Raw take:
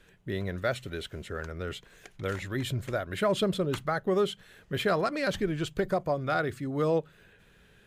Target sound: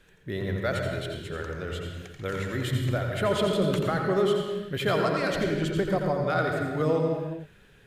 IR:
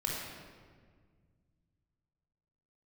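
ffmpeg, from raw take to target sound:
-filter_complex "[0:a]asplit=2[link_01][link_02];[1:a]atrim=start_sample=2205,afade=type=out:start_time=0.43:duration=0.01,atrim=end_sample=19404,adelay=85[link_03];[link_02][link_03]afir=irnorm=-1:irlink=0,volume=-6dB[link_04];[link_01][link_04]amix=inputs=2:normalize=0"

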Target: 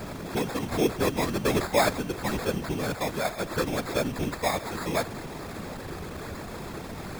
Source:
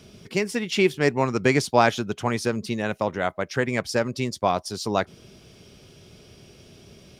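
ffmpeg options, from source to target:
ffmpeg -i in.wav -af "aeval=exprs='val(0)+0.5*0.0501*sgn(val(0))':channel_layout=same,acrusher=samples=15:mix=1:aa=0.000001,afftfilt=real='hypot(re,im)*cos(2*PI*random(0))':imag='hypot(re,im)*sin(2*PI*random(1))':win_size=512:overlap=0.75" out.wav

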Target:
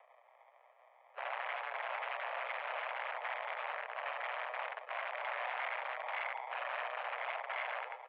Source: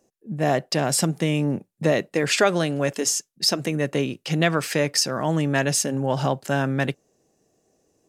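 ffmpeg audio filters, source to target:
ffmpeg -i in.wav -filter_complex "[0:a]areverse,flanger=delay=4:depth=6.6:regen=-13:speed=1.4:shape=triangular,acompressor=threshold=-31dB:ratio=6,asplit=2[link_01][link_02];[link_02]aecho=0:1:80|172|277.8|399.5|539.4:0.631|0.398|0.251|0.158|0.1[link_03];[link_01][link_03]amix=inputs=2:normalize=0,acrusher=samples=35:mix=1:aa=0.000001,aeval=exprs='val(0)*sin(2*PI*62*n/s)':channel_layout=same,acrossover=split=1300[link_04][link_05];[link_04]aeval=exprs='(mod(42.2*val(0)+1,2)-1)/42.2':channel_layout=same[link_06];[link_06][link_05]amix=inputs=2:normalize=0,acompressor=mode=upward:threshold=-52dB:ratio=2.5,highpass=frequency=350:width_type=q:width=0.5412,highpass=frequency=350:width_type=q:width=1.307,lowpass=frequency=2500:width_type=q:width=0.5176,lowpass=frequency=2500:width_type=q:width=0.7071,lowpass=frequency=2500:width_type=q:width=1.932,afreqshift=240,volume=1dB" out.wav

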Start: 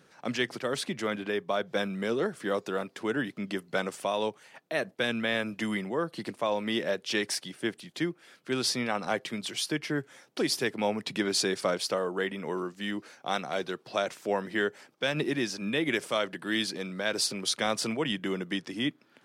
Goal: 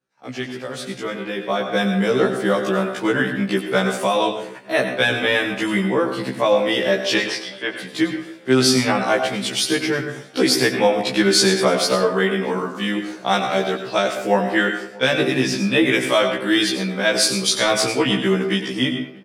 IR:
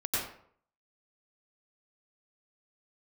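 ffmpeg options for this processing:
-filter_complex "[0:a]agate=range=-33dB:threshold=-48dB:ratio=3:detection=peak,asettb=1/sr,asplit=3[link_01][link_02][link_03];[link_01]atrim=end=7.184[link_04];[link_02]atrim=start=7.18:end=7.76,asetpts=PTS-STARTPTS,afade=type=in:duration=0.004:curve=qsin,afade=type=out:start_time=0.576:duration=0.004:curve=qsin,acrossover=split=400 4700:gain=0.141 1 0.1[link_05][link_06][link_07];[link_05][link_06][link_07]amix=inputs=3:normalize=0[link_08];[link_03]atrim=start=7.756[link_09];[link_04][link_08]acrossfade=duration=0.004:curve1=hsin:curve2=qsin[link_10];[link_10][link_09]acrossfade=duration=0.004:curve1=qsin:curve2=hsin,asplit=2[link_11][link_12];[link_12]adelay=633,lowpass=frequency=1400:poles=1,volume=-23.5dB,asplit=2[link_13][link_14];[link_14]adelay=633,lowpass=frequency=1400:poles=1,volume=0.46,asplit=2[link_15][link_16];[link_16]adelay=633,lowpass=frequency=1400:poles=1,volume=0.46[link_17];[link_11][link_13][link_15][link_17]amix=inputs=4:normalize=0,dynaudnorm=framelen=270:gausssize=11:maxgain=13dB,asplit=2[link_18][link_19];[1:a]atrim=start_sample=2205[link_20];[link_19][link_20]afir=irnorm=-1:irlink=0,volume=-11dB[link_21];[link_18][link_21]amix=inputs=2:normalize=0,afftfilt=real='re*1.73*eq(mod(b,3),0)':imag='im*1.73*eq(mod(b,3),0)':win_size=2048:overlap=0.75"

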